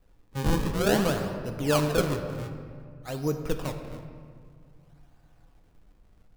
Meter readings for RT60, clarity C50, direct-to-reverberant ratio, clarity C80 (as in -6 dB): 2.1 s, 7.5 dB, 5.0 dB, 8.5 dB